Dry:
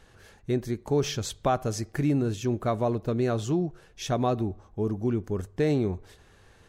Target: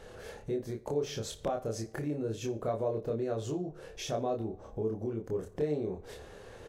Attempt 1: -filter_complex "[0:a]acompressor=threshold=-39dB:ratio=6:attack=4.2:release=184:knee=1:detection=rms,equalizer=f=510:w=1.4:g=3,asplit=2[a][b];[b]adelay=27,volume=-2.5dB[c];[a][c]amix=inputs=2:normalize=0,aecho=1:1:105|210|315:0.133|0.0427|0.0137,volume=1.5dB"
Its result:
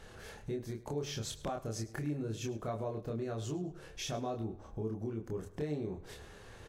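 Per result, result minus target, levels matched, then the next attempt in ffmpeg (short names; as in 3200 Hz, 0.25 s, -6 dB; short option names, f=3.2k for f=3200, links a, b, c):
echo 46 ms late; 500 Hz band -2.5 dB
-filter_complex "[0:a]acompressor=threshold=-39dB:ratio=6:attack=4.2:release=184:knee=1:detection=rms,equalizer=f=510:w=1.4:g=3,asplit=2[a][b];[b]adelay=27,volume=-2.5dB[c];[a][c]amix=inputs=2:normalize=0,aecho=1:1:59|118|177:0.133|0.0427|0.0137,volume=1.5dB"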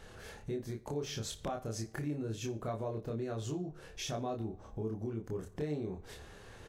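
500 Hz band -2.5 dB
-filter_complex "[0:a]acompressor=threshold=-39dB:ratio=6:attack=4.2:release=184:knee=1:detection=rms,equalizer=f=510:w=1.4:g=12,asplit=2[a][b];[b]adelay=27,volume=-2.5dB[c];[a][c]amix=inputs=2:normalize=0,aecho=1:1:59|118|177:0.133|0.0427|0.0137,volume=1.5dB"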